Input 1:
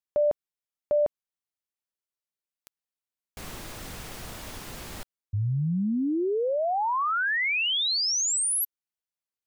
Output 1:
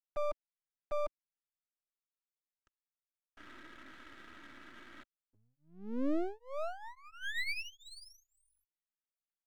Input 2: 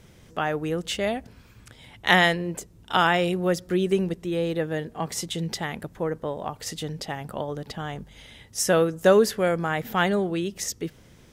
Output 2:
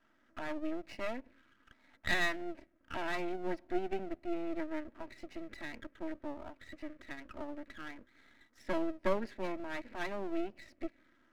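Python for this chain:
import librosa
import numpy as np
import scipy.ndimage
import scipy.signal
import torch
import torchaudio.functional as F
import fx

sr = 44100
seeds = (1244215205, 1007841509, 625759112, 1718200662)

y = x + 0.52 * np.pad(x, (int(3.1 * sr / 1000.0), 0))[:len(x)]
y = fx.env_phaser(y, sr, low_hz=410.0, high_hz=1300.0, full_db=-26.5)
y = fx.cabinet(y, sr, low_hz=250.0, low_slope=24, high_hz=3600.0, hz=(450.0, 750.0, 1200.0, 3200.0), db=(-9, -8, 5, -9))
y = fx.fixed_phaser(y, sr, hz=690.0, stages=8)
y = np.maximum(y, 0.0)
y = F.gain(torch.from_numpy(y), -1.5).numpy()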